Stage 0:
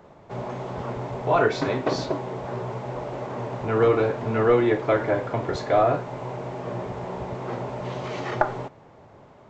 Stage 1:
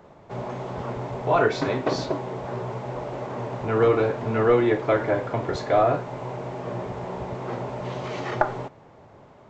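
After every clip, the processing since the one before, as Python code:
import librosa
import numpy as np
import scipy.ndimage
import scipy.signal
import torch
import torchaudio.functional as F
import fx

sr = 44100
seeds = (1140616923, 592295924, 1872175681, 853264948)

y = x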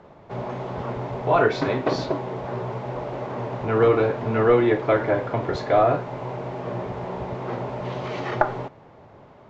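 y = scipy.signal.sosfilt(scipy.signal.butter(2, 5100.0, 'lowpass', fs=sr, output='sos'), x)
y = y * librosa.db_to_amplitude(1.5)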